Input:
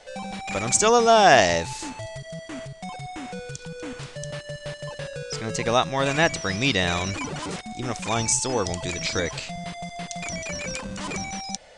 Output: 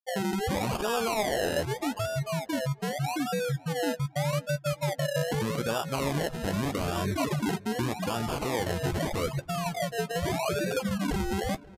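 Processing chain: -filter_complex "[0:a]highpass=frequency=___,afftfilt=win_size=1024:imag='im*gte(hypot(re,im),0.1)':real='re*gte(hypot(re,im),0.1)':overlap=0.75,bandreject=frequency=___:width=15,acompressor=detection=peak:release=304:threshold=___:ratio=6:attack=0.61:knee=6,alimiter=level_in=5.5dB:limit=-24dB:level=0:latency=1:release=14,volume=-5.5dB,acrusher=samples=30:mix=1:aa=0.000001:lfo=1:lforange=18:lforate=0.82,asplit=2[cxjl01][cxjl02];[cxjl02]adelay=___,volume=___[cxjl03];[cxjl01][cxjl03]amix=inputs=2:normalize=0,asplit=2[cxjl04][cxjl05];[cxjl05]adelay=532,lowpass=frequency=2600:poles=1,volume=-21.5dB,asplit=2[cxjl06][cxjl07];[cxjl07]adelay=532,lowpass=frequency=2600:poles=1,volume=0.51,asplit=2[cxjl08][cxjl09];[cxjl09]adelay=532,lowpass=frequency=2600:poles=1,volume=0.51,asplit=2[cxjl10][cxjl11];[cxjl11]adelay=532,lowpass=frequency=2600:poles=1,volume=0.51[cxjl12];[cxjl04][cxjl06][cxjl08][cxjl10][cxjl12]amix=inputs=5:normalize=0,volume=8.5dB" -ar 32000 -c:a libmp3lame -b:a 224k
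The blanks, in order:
60, 7900, -30dB, 14, -11dB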